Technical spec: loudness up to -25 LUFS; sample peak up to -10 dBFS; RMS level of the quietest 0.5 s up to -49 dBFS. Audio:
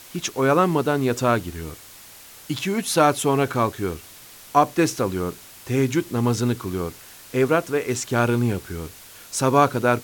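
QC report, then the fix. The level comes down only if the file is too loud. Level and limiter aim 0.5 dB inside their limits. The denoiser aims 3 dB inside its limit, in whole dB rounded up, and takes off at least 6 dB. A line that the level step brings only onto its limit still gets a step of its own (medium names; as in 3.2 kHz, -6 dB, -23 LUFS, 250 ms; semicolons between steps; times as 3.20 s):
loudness -22.0 LUFS: fail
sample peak -4.0 dBFS: fail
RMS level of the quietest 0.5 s -45 dBFS: fail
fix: noise reduction 6 dB, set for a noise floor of -45 dBFS; trim -3.5 dB; peak limiter -10.5 dBFS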